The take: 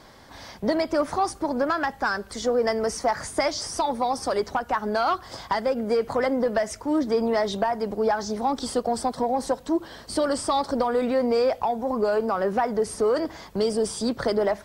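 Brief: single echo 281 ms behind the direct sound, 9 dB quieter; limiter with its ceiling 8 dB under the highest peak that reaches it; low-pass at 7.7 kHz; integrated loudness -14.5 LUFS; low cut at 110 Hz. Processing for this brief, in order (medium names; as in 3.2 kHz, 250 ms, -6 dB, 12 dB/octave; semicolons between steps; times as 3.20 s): high-pass 110 Hz; low-pass 7.7 kHz; peak limiter -19.5 dBFS; delay 281 ms -9 dB; trim +13.5 dB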